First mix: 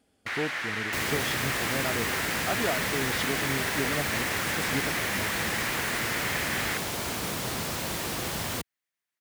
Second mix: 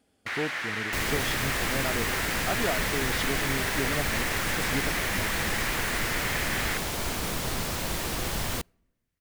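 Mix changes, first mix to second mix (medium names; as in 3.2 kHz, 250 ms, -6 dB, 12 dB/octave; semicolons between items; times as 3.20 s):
second sound: remove high-pass 91 Hz 12 dB/octave; reverb: on, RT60 1.0 s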